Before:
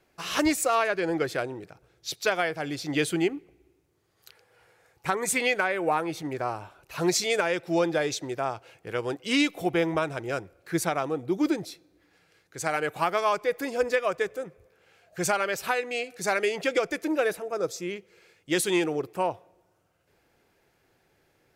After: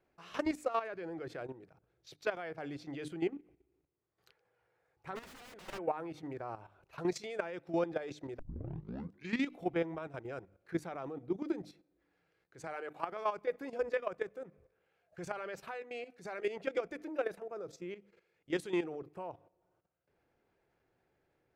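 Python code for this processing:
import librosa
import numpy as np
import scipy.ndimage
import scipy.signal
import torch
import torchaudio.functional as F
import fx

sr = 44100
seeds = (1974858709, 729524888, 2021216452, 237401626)

y = fx.overflow_wrap(x, sr, gain_db=27.0, at=(5.15, 5.77), fade=0.02)
y = fx.highpass(y, sr, hz=240.0, slope=12, at=(12.67, 13.12))
y = fx.edit(y, sr, fx.tape_start(start_s=8.39, length_s=1.1), tone=tone)
y = fx.lowpass(y, sr, hz=1500.0, slope=6)
y = fx.hum_notches(y, sr, base_hz=50, count=6)
y = fx.level_steps(y, sr, step_db=12)
y = F.gain(torch.from_numpy(y), -5.5).numpy()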